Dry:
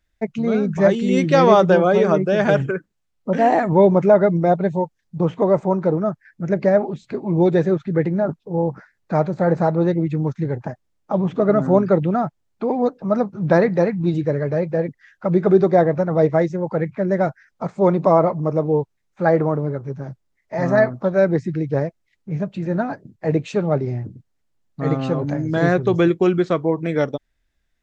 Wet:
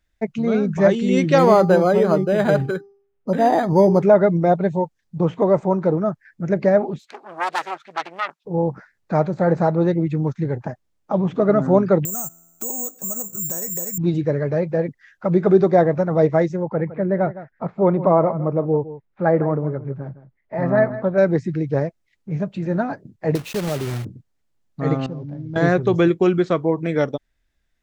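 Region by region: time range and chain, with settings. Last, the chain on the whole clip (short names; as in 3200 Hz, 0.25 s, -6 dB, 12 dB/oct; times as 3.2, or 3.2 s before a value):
1.38–4.03 air absorption 85 m + de-hum 398.5 Hz, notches 3 + decimation joined by straight lines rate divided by 8×
6.99–8.45 self-modulated delay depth 0.97 ms + HPF 980 Hz + hard clip -11 dBFS
12.05–13.98 compressor, threshold -28 dBFS + resonator 84 Hz, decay 1.4 s, mix 40% + careless resampling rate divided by 6×, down none, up zero stuff
16.63–21.18 air absorption 370 m + echo 0.161 s -15 dB
23.35–24.06 block floating point 3-bit + compressor 2.5:1, threshold -21 dBFS
25.06–25.56 CVSD 32 kbps + band-pass 120 Hz, Q 0.95 + tilt +2 dB/oct
whole clip: dry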